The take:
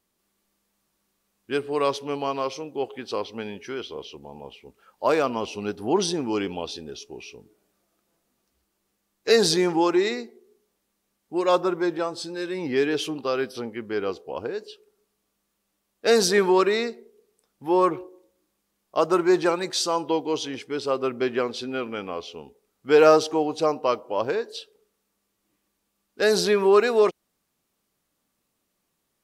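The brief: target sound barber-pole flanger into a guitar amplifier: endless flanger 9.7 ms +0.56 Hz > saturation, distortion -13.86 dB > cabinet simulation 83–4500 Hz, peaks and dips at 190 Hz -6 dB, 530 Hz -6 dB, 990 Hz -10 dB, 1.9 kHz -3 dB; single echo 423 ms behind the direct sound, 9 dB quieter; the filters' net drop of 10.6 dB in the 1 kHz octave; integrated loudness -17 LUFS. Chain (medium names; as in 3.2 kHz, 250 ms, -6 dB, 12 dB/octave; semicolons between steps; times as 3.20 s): peaking EQ 1 kHz -8.5 dB; delay 423 ms -9 dB; endless flanger 9.7 ms +0.56 Hz; saturation -19 dBFS; cabinet simulation 83–4500 Hz, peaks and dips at 190 Hz -6 dB, 530 Hz -6 dB, 990 Hz -10 dB, 1.9 kHz -3 dB; trim +16 dB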